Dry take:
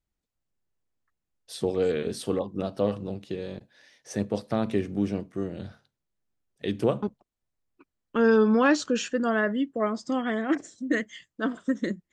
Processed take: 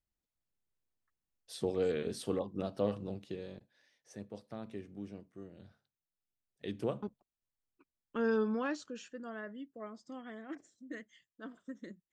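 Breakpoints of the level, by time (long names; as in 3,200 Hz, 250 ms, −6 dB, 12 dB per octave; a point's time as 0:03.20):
0:03.18 −7 dB
0:04.21 −18 dB
0:05.56 −18 dB
0:06.65 −11 dB
0:08.39 −11 dB
0:08.94 −19 dB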